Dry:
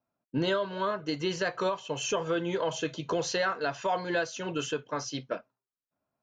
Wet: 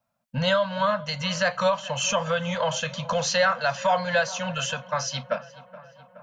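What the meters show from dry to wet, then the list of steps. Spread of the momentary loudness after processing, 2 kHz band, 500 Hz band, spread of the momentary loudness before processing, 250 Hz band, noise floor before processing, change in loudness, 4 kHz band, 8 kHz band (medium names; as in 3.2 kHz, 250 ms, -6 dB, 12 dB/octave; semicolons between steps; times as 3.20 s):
7 LU, +8.0 dB, +5.0 dB, 6 LU, +0.5 dB, under -85 dBFS, +6.0 dB, +8.0 dB, +8.0 dB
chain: elliptic band-stop 230–530 Hz; filtered feedback delay 422 ms, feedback 69%, low-pass 2.8 kHz, level -18.5 dB; trim +8 dB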